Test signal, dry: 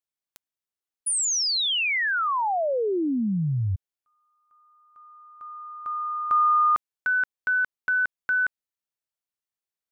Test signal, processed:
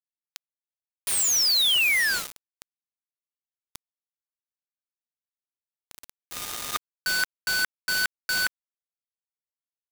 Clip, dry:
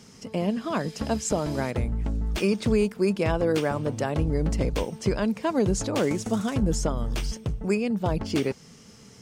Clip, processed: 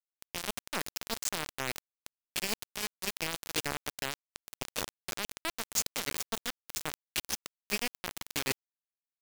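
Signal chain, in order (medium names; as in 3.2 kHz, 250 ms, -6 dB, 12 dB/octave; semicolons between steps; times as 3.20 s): modulation noise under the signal 19 dB; reverse; compression 8:1, threshold -35 dBFS; reverse; frequency weighting D; bit crusher 5-bit; trim +4 dB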